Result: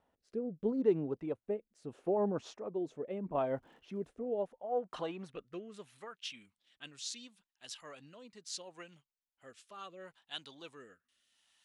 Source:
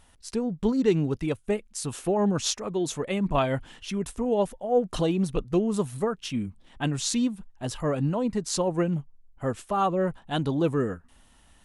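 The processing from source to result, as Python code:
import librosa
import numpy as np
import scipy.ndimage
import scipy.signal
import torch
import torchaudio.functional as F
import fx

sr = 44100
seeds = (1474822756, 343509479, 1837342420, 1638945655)

y = fx.filter_sweep_bandpass(x, sr, from_hz=520.0, to_hz=4100.0, start_s=3.99, end_s=6.54, q=1.0)
y = fx.dmg_crackle(y, sr, seeds[0], per_s=190.0, level_db=-59.0, at=(3.34, 4.12), fade=0.02)
y = fx.rotary(y, sr, hz=0.75)
y = F.gain(torch.from_numpy(y), -4.5).numpy()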